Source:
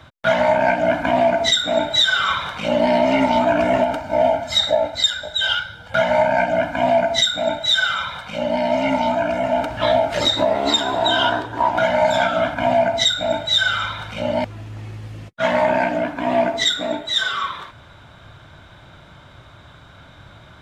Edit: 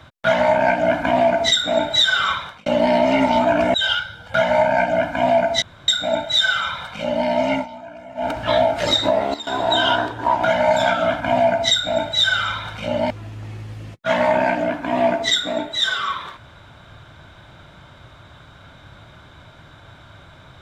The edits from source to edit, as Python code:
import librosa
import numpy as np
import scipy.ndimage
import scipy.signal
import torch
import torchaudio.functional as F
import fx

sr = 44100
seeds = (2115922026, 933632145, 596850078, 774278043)

y = fx.edit(x, sr, fx.fade_out_span(start_s=2.26, length_s=0.4),
    fx.cut(start_s=3.74, length_s=1.6),
    fx.insert_room_tone(at_s=7.22, length_s=0.26),
    fx.fade_down_up(start_s=8.87, length_s=0.76, db=-17.0, fade_s=0.14),
    fx.fade_down_up(start_s=10.41, length_s=0.67, db=-15.5, fade_s=0.27, curve='log'), tone=tone)